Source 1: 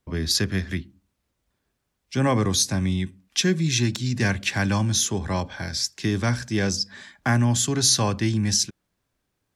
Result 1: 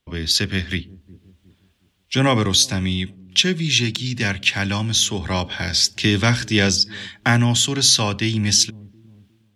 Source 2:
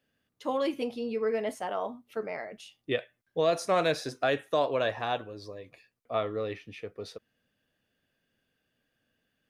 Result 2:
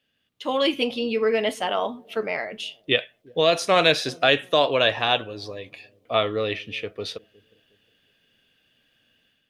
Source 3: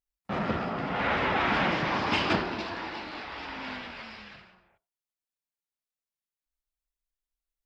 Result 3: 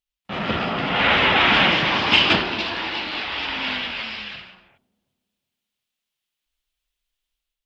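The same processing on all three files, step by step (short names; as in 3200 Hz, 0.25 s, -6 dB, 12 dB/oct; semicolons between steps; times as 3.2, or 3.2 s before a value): bell 3100 Hz +12 dB 1 oct; on a send: dark delay 0.361 s, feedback 33%, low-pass 430 Hz, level -21.5 dB; on the sum: AGC gain up to 8 dB; gain -1 dB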